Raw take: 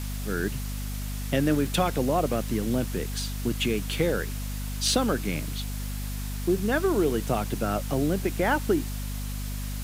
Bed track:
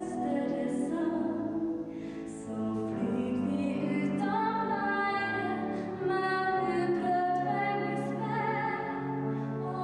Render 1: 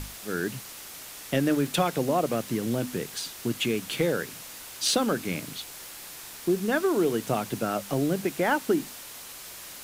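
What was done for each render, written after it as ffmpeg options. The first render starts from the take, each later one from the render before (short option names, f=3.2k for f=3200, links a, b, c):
-af "bandreject=f=50:t=h:w=6,bandreject=f=100:t=h:w=6,bandreject=f=150:t=h:w=6,bandreject=f=200:t=h:w=6,bandreject=f=250:t=h:w=6"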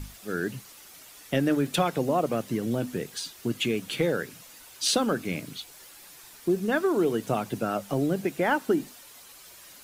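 -af "afftdn=nr=9:nf=-43"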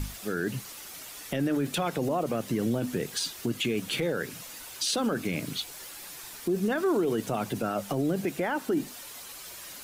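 -filter_complex "[0:a]asplit=2[a][b];[b]acompressor=threshold=-32dB:ratio=6,volume=-0.5dB[c];[a][c]amix=inputs=2:normalize=0,alimiter=limit=-19.5dB:level=0:latency=1:release=25"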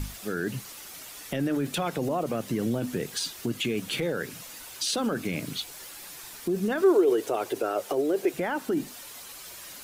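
-filter_complex "[0:a]asettb=1/sr,asplit=3[a][b][c];[a]atrim=end=6.824[d];[b]atrim=start=6.82:end=8.34,asetpts=PTS-STARTPTS,afade=t=in:d=0.004:c=qsin,afade=t=out:st=1.516:d=0.004:c=qsin,lowshelf=f=270:t=q:w=3:g=-12[e];[c]atrim=start=8.336[f];[d][e]acrossfade=d=0.004:c1=hsin:c2=qsin[g];[g][f]acrossfade=d=0.004:c1=qsin:c2=hsin"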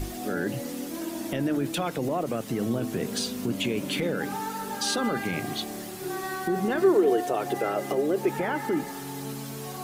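-filter_complex "[1:a]volume=-3.5dB[a];[0:a][a]amix=inputs=2:normalize=0"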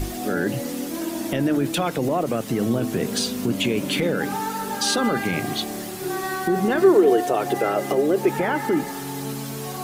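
-af "volume=5.5dB"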